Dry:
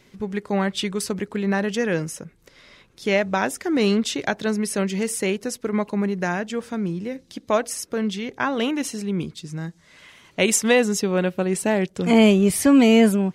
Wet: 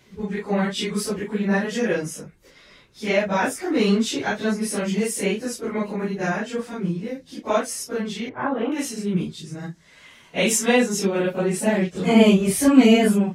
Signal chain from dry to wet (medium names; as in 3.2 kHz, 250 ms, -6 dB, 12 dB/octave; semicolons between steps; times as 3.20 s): phase randomisation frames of 100 ms; 8.29–8.72 s: low-pass 1.4 kHz 12 dB/octave